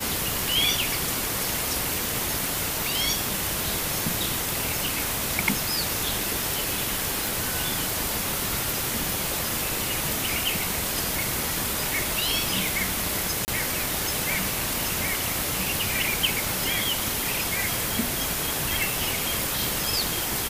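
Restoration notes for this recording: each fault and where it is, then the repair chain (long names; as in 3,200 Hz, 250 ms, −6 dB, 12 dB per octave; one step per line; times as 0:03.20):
0:04.53: click
0:07.27: click
0:13.45–0:13.48: drop-out 29 ms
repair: click removal
repair the gap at 0:13.45, 29 ms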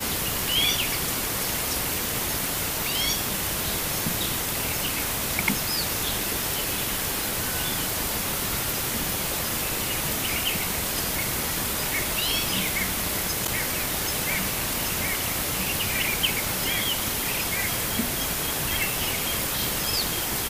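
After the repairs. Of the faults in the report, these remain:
none of them is left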